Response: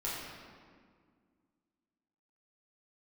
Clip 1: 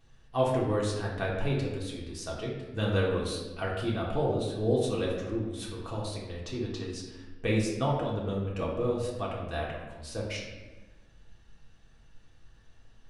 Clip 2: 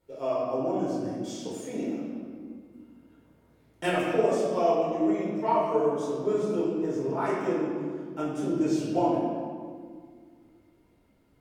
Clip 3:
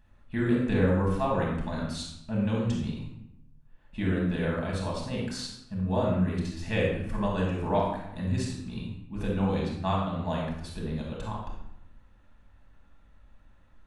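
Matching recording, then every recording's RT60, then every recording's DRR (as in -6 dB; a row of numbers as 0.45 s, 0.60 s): 2; 1.2 s, 1.9 s, 0.80 s; -4.5 dB, -8.0 dB, -4.0 dB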